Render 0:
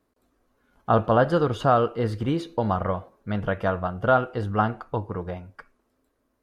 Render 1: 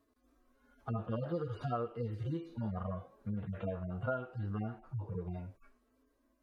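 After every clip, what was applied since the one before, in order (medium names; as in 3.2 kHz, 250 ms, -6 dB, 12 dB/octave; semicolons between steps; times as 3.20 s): harmonic-percussive separation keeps harmonic; compression 3:1, threshold -38 dBFS, peak gain reduction 17 dB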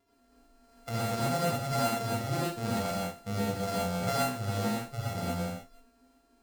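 sorted samples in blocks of 64 samples; gated-style reverb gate 150 ms rising, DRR -7 dB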